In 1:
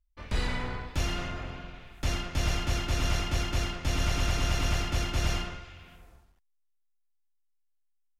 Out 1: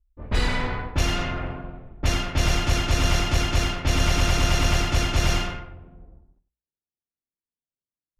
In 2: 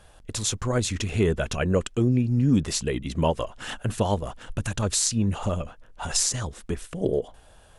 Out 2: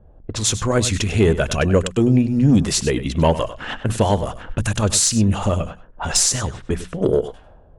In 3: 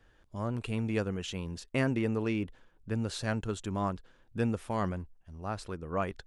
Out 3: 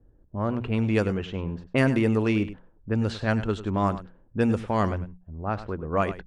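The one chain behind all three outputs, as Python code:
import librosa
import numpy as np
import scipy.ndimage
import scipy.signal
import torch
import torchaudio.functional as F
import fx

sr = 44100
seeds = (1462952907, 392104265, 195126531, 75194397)

y = fx.diode_clip(x, sr, knee_db=-6.0)
y = fx.hum_notches(y, sr, base_hz=60, count=3)
y = fx.fold_sine(y, sr, drive_db=4, ceiling_db=-5.5)
y = fx.env_lowpass(y, sr, base_hz=340.0, full_db=-18.0)
y = y + 10.0 ** (-14.0 / 20.0) * np.pad(y, (int(99 * sr / 1000.0), 0))[:len(y)]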